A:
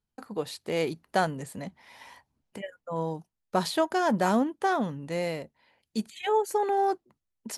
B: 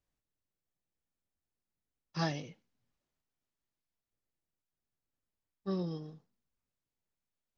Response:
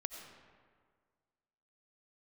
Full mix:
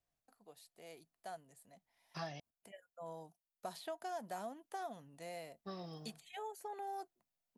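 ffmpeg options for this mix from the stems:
-filter_complex "[0:a]aemphasis=mode=production:type=50fm,adelay=100,volume=0.447,afade=t=in:st=2.11:d=0.75:silence=0.334965[s0];[1:a]equalizer=f=140:w=3:g=6,volume=0.794,asplit=3[s1][s2][s3];[s1]atrim=end=2.4,asetpts=PTS-STARTPTS,afade=t=out:st=2.396:d=0.004:c=hsin[s4];[s2]atrim=start=2.4:end=3.73,asetpts=PTS-STARTPTS,volume=0[s5];[s3]atrim=start=3.73,asetpts=PTS-STARTPTS,afade=t=in:d=0.004:c=hsin[s6];[s4][s5][s6]concat=n=3:v=0:a=1,asplit=2[s7][s8];[s8]apad=whole_len=338535[s9];[s0][s9]sidechaingate=range=0.316:threshold=0.00251:ratio=16:detection=peak[s10];[s10][s7]amix=inputs=2:normalize=0,equalizer=f=690:w=5.9:g=12.5,acrossover=split=670|3800[s11][s12][s13];[s11]acompressor=threshold=0.00562:ratio=4[s14];[s12]acompressor=threshold=0.00631:ratio=4[s15];[s13]acompressor=threshold=0.00112:ratio=4[s16];[s14][s15][s16]amix=inputs=3:normalize=0,lowshelf=f=480:g=-4.5"

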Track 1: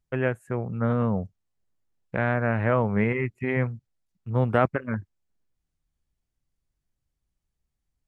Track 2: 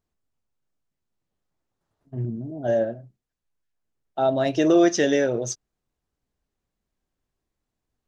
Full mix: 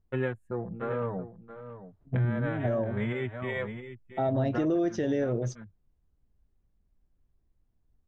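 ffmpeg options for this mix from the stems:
-filter_complex "[0:a]afwtdn=0.0126,asplit=2[s0][s1];[s1]adelay=4.9,afreqshift=-0.7[s2];[s0][s2]amix=inputs=2:normalize=1,volume=0.841,asplit=2[s3][s4];[s4]volume=0.237[s5];[1:a]aemphasis=mode=reproduction:type=riaa,volume=0.668,asplit=2[s6][s7];[s7]apad=whole_len=356444[s8];[s3][s8]sidechaincompress=threshold=0.0794:ratio=8:attack=7.5:release=193[s9];[s5]aecho=0:1:675:1[s10];[s9][s6][s10]amix=inputs=3:normalize=0,alimiter=limit=0.106:level=0:latency=1:release=315"

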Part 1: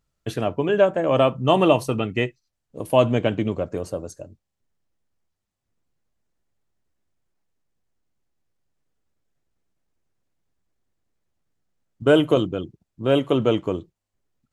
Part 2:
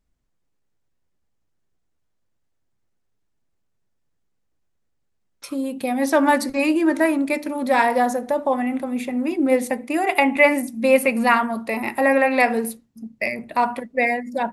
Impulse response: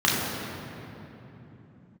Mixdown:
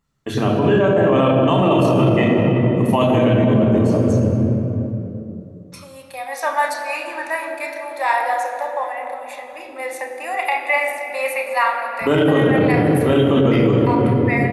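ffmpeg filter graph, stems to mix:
-filter_complex "[0:a]volume=0.794,asplit=2[s0][s1];[s1]volume=0.376[s2];[1:a]highpass=f=610:w=0.5412,highpass=f=610:w=1.3066,adelay=300,volume=0.596,asplit=2[s3][s4];[s4]volume=0.158[s5];[2:a]atrim=start_sample=2205[s6];[s2][s5]amix=inputs=2:normalize=0[s7];[s7][s6]afir=irnorm=-1:irlink=0[s8];[s0][s3][s8]amix=inputs=3:normalize=0,alimiter=limit=0.447:level=0:latency=1:release=33"

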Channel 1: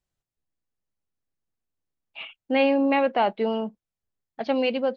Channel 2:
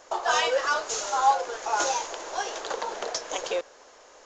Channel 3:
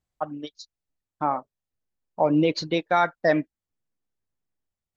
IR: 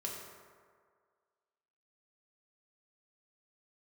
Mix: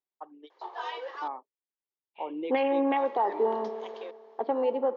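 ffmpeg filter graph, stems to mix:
-filter_complex "[0:a]afwtdn=0.0398,volume=1.26,asplit=2[s0][s1];[s1]volume=0.355[s2];[1:a]adelay=500,volume=0.282,asplit=3[s3][s4][s5];[s3]atrim=end=1.28,asetpts=PTS-STARTPTS,afade=t=out:st=1.276:d=0.004:c=hsin[s6];[s4]atrim=start=1.28:end=2.96,asetpts=PTS-STARTPTS,volume=0[s7];[s5]atrim=start=2.96,asetpts=PTS-STARTPTS,afade=t=in:d=0.004:c=hsin[s8];[s6][s7][s8]concat=n=3:v=0:a=1[s9];[2:a]volume=0.266[s10];[3:a]atrim=start_sample=2205[s11];[s2][s11]afir=irnorm=-1:irlink=0[s12];[s0][s9][s10][s12]amix=inputs=4:normalize=0,highpass=f=330:w=0.5412,highpass=f=330:w=1.3066,equalizer=f=390:t=q:w=4:g=4,equalizer=f=620:t=q:w=4:g=-9,equalizer=f=930:t=q:w=4:g=5,equalizer=f=1400:t=q:w=4:g=-9,equalizer=f=2600:t=q:w=4:g=-6,lowpass=f=3500:w=0.5412,lowpass=f=3500:w=1.3066,alimiter=limit=0.133:level=0:latency=1:release=350"

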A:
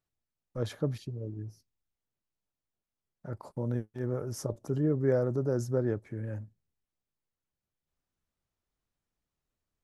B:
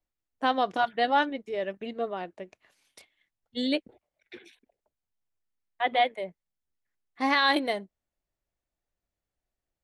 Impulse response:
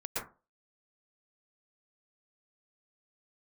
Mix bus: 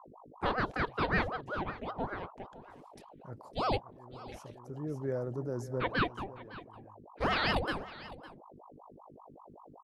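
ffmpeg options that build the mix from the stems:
-filter_complex "[0:a]volume=0.447,asplit=2[s0][s1];[s1]volume=0.158[s2];[1:a]lowshelf=f=350:g=9.5,aeval=exprs='val(0)+0.00562*(sin(2*PI*50*n/s)+sin(2*PI*2*50*n/s)/2+sin(2*PI*3*50*n/s)/3+sin(2*PI*4*50*n/s)/4+sin(2*PI*5*50*n/s)/5)':c=same,aeval=exprs='val(0)*sin(2*PI*610*n/s+610*0.7/5.2*sin(2*PI*5.2*n/s))':c=same,volume=0.531,asplit=3[s3][s4][s5];[s4]volume=0.133[s6];[s5]apad=whole_len=433558[s7];[s0][s7]sidechaincompress=threshold=0.00631:ratio=12:attack=35:release=1150[s8];[s2][s6]amix=inputs=2:normalize=0,aecho=0:1:557:1[s9];[s8][s3][s9]amix=inputs=3:normalize=0"

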